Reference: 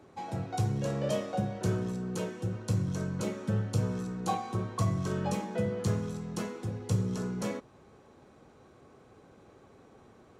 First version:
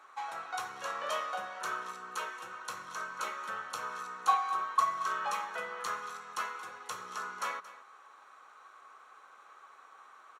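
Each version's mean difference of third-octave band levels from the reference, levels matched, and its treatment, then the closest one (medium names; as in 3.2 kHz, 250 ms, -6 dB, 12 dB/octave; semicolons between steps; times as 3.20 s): 11.5 dB: band-stop 4.9 kHz, Q 8.4; dynamic bell 8.1 kHz, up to -6 dB, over -60 dBFS, Q 1.5; resonant high-pass 1.2 kHz, resonance Q 3.8; on a send: delay 227 ms -16 dB; on the sum: trim +2 dB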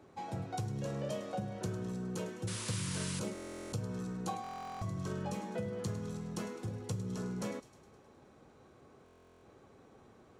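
4.0 dB: compression, threshold -31 dBFS, peak gain reduction 8.5 dB; painted sound noise, 2.47–3.20 s, 870–11000 Hz -40 dBFS; feedback echo behind a high-pass 104 ms, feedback 62%, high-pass 3.2 kHz, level -13 dB; buffer glitch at 3.33/4.42/9.04 s, samples 1024, times 16; trim -3 dB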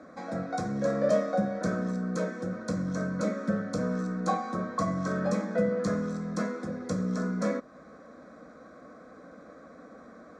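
5.0 dB: high-pass 210 Hz 6 dB/octave; in parallel at -3 dB: compression, threshold -45 dBFS, peak gain reduction 17 dB; on the sum: distance through air 120 m; static phaser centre 580 Hz, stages 8; trim +8 dB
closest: second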